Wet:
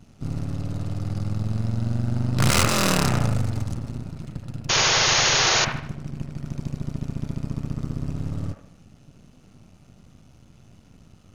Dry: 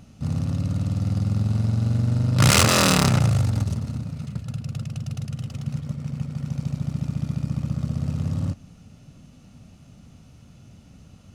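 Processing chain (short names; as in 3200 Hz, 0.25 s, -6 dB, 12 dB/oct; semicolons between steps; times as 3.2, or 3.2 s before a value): half-wave gain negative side -12 dB; painted sound noise, 4.69–5.65, 330–6900 Hz -20 dBFS; band-limited delay 76 ms, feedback 43%, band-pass 1100 Hz, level -4 dB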